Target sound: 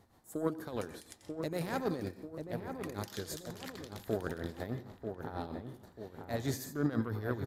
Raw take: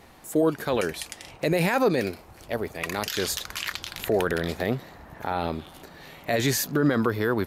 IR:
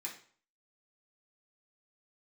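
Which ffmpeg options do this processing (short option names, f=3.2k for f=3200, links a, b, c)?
-filter_complex "[0:a]asplit=2[a][b];[1:a]atrim=start_sample=2205,adelay=90[c];[b][c]afir=irnorm=-1:irlink=0,volume=-7dB[d];[a][d]amix=inputs=2:normalize=0,aeval=exprs='0.376*(cos(1*acos(clip(val(0)/0.376,-1,1)))-cos(1*PI/2))+0.0668*(cos(3*acos(clip(val(0)/0.376,-1,1)))-cos(3*PI/2))':c=same,equalizer=f=100:t=o:w=0.67:g=10,equalizer=f=250:t=o:w=0.67:g=4,equalizer=f=2.5k:t=o:w=0.67:g=-9,asplit=2[e][f];[f]adelay=939,lowpass=f=1.3k:p=1,volume=-6dB,asplit=2[g][h];[h]adelay=939,lowpass=f=1.3k:p=1,volume=0.53,asplit=2[i][j];[j]adelay=939,lowpass=f=1.3k:p=1,volume=0.53,asplit=2[k][l];[l]adelay=939,lowpass=f=1.3k:p=1,volume=0.53,asplit=2[m][n];[n]adelay=939,lowpass=f=1.3k:p=1,volume=0.53,asplit=2[o][p];[p]adelay=939,lowpass=f=1.3k:p=1,volume=0.53,asplit=2[q][r];[r]adelay=939,lowpass=f=1.3k:p=1,volume=0.53[s];[e][g][i][k][m][o][q][s]amix=inputs=8:normalize=0,tremolo=f=6.3:d=0.67,volume=-6.5dB"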